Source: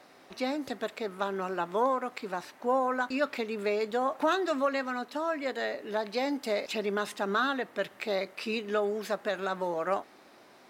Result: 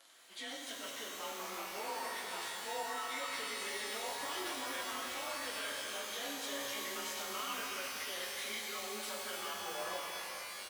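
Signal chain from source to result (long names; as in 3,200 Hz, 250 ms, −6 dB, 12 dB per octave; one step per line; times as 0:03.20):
partials spread apart or drawn together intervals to 92%
first-order pre-emphasis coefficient 0.97
brickwall limiter −43.5 dBFS, peak gain reduction 10 dB
flanger 0.34 Hz, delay 9 ms, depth 6.5 ms, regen −45%
echo with shifted repeats 347 ms, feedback 63%, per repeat −150 Hz, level −22.5 dB
reverb with rising layers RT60 3.5 s, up +12 semitones, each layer −2 dB, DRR −1 dB
level +11.5 dB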